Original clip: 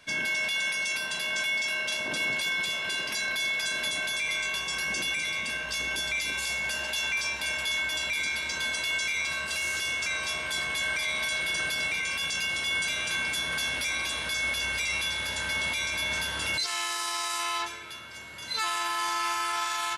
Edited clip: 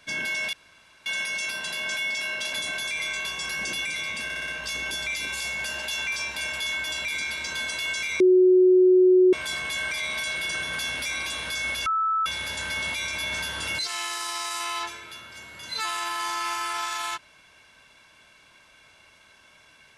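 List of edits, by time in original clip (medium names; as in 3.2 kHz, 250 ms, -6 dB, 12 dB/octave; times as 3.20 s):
0.53 s: insert room tone 0.53 s
2.00–3.82 s: delete
5.53 s: stutter 0.06 s, 5 plays
9.25–10.38 s: bleep 368 Hz -13 dBFS
11.68–13.42 s: delete
14.65–15.05 s: bleep 1.31 kHz -21 dBFS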